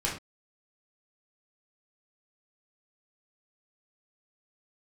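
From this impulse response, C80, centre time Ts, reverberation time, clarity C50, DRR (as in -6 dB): 11.5 dB, 31 ms, not exponential, 6.0 dB, -6.0 dB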